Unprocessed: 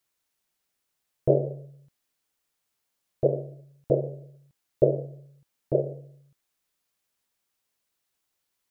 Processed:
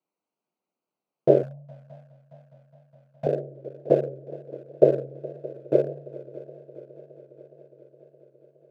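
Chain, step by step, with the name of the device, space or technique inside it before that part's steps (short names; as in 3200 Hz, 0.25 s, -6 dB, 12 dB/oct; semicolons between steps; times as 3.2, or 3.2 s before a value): Wiener smoothing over 25 samples; multi-head tape echo (multi-head echo 0.207 s, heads second and third, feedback 66%, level -20 dB; wow and flutter); HPF 170 Hz 24 dB/oct; 1.43–3.27 Chebyshev band-stop 180–810 Hz, order 2; gain +4.5 dB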